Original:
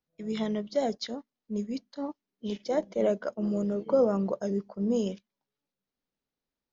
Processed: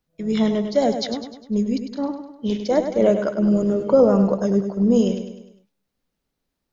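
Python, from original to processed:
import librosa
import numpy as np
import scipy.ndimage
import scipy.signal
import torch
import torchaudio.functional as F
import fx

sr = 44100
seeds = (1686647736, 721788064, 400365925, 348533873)

p1 = fx.low_shelf(x, sr, hz=150.0, db=8.0)
p2 = p1 + fx.echo_feedback(p1, sr, ms=101, feedback_pct=48, wet_db=-8.5, dry=0)
y = p2 * librosa.db_to_amplitude(8.0)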